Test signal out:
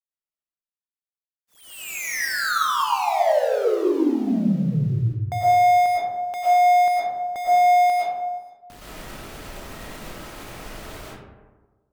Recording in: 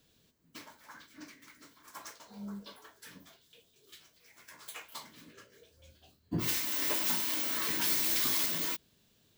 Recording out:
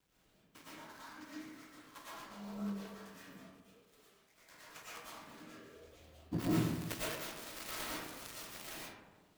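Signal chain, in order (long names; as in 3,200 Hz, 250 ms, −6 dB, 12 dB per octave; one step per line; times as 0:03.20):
gap after every zero crossing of 0.13 ms
harmonic generator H 3 −16 dB, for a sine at −18.5 dBFS
comb and all-pass reverb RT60 1.3 s, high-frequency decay 0.4×, pre-delay 75 ms, DRR −8.5 dB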